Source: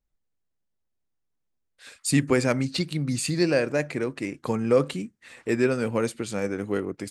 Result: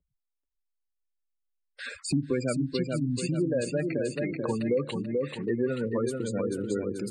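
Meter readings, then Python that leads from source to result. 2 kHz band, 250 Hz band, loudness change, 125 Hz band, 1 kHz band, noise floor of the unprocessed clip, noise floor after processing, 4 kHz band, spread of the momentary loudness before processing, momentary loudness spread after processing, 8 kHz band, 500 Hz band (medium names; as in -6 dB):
-8.0 dB, -2.5 dB, -4.0 dB, -3.0 dB, -8.0 dB, -77 dBFS, -84 dBFS, -6.5 dB, 9 LU, 3 LU, -7.0 dB, -3.5 dB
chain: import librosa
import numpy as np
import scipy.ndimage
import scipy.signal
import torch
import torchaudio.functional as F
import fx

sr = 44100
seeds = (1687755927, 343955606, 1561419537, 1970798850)

y = fx.spec_gate(x, sr, threshold_db=-15, keep='strong')
y = fx.echo_feedback(y, sr, ms=435, feedback_pct=36, wet_db=-5.5)
y = fx.noise_reduce_blind(y, sr, reduce_db=24)
y = fx.band_squash(y, sr, depth_pct=70)
y = F.gain(torch.from_numpy(y), -4.5).numpy()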